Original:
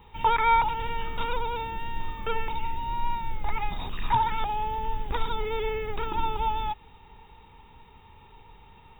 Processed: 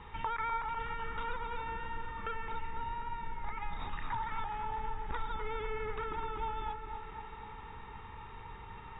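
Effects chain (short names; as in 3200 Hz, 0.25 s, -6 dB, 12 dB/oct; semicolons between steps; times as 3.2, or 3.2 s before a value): band shelf 1500 Hz +8 dB 1.1 oct; compressor 3:1, threshold -41 dBFS, peak gain reduction 19 dB; air absorption 92 m; dark delay 0.25 s, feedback 69%, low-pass 2100 Hz, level -6.5 dB; gain +1.5 dB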